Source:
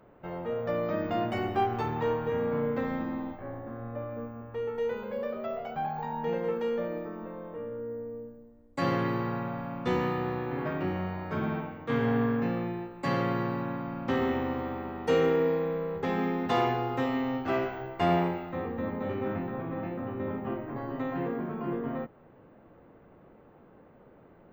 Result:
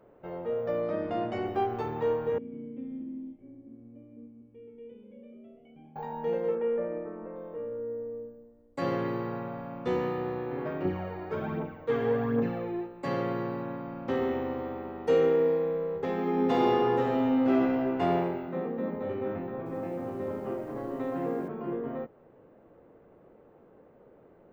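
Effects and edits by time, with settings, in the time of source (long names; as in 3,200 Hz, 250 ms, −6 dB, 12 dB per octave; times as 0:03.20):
0:00.81–0:01.46: Butterworth low-pass 7,400 Hz
0:02.38–0:05.96: formant resonators in series i
0:06.55–0:07.36: Butterworth low-pass 2,600 Hz
0:10.85–0:12.86: phase shifter 1.3 Hz
0:16.19–0:17.95: thrown reverb, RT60 2.8 s, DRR −1.5 dB
0:18.47–0:18.95: low shelf with overshoot 130 Hz −10 dB, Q 3
0:19.58–0:21.48: feedback echo at a low word length 80 ms, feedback 80%, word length 9 bits, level −10 dB
whole clip: parametric band 460 Hz +7.5 dB 1.2 octaves; level −5.5 dB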